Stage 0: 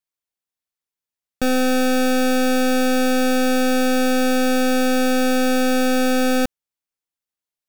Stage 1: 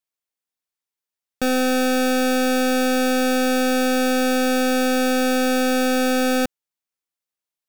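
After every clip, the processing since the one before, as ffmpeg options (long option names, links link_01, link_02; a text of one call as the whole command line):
ffmpeg -i in.wav -af "lowshelf=frequency=130:gain=-7.5" out.wav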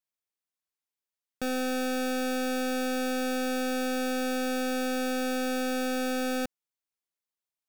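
ffmpeg -i in.wav -af "alimiter=limit=-18.5dB:level=0:latency=1,volume=-5dB" out.wav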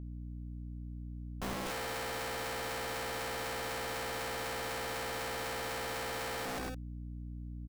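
ffmpeg -i in.wav -af "aecho=1:1:122.4|239.1|288.6:0.631|0.355|0.251,aeval=exprs='val(0)+0.0112*(sin(2*PI*60*n/s)+sin(2*PI*2*60*n/s)/2+sin(2*PI*3*60*n/s)/3+sin(2*PI*4*60*n/s)/4+sin(2*PI*5*60*n/s)/5)':channel_layout=same,aeval=exprs='(mod(33.5*val(0)+1,2)-1)/33.5':channel_layout=same,volume=-2.5dB" out.wav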